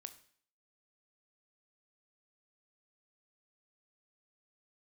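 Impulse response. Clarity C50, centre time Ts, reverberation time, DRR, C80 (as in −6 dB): 14.0 dB, 6 ms, 0.55 s, 10.0 dB, 17.5 dB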